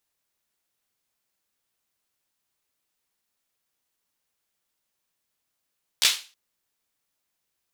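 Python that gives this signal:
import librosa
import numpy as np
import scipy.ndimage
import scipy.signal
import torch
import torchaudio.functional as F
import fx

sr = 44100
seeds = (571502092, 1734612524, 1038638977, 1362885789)

y = fx.drum_clap(sr, seeds[0], length_s=0.32, bursts=3, spacing_ms=14, hz=3700.0, decay_s=0.34)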